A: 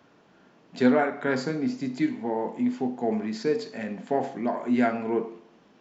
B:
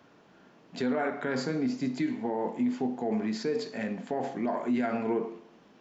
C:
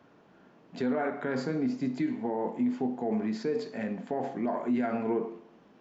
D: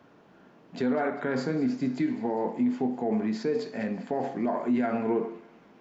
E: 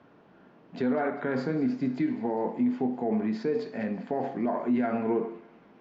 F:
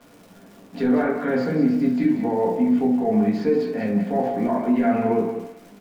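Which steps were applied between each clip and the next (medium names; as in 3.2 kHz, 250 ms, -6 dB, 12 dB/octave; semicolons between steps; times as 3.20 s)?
peak limiter -21 dBFS, peak gain reduction 11.5 dB
treble shelf 2.5 kHz -8 dB
feedback echo behind a high-pass 199 ms, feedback 66%, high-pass 1.7 kHz, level -16.5 dB; trim +2.5 dB
distance through air 140 m
crackle 190 per s -43 dBFS; on a send: delay 183 ms -10 dB; on the sum: simulated room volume 120 m³, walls furnished, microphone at 1.8 m; trim +1.5 dB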